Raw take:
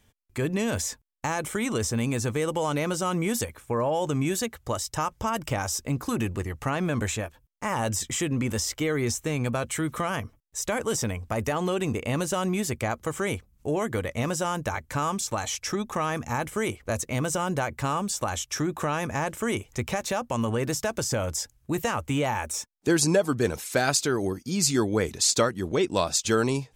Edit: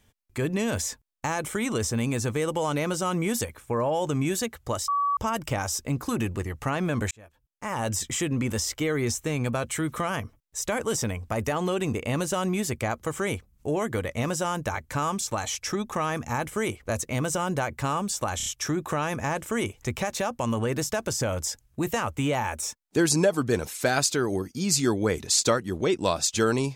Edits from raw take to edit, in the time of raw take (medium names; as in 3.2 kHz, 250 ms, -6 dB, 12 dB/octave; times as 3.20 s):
4.88–5.17 s: bleep 1.14 kHz -21.5 dBFS
7.11–7.95 s: fade in
18.37 s: stutter 0.03 s, 4 plays